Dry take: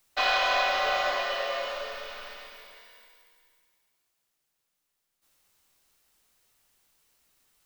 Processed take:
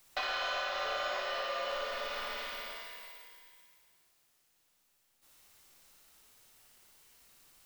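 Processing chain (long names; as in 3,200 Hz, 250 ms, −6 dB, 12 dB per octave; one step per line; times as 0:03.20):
downward compressor 4 to 1, threshold −41 dBFS, peak gain reduction 16 dB
flutter between parallel walls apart 10 metres, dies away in 0.79 s
level +4.5 dB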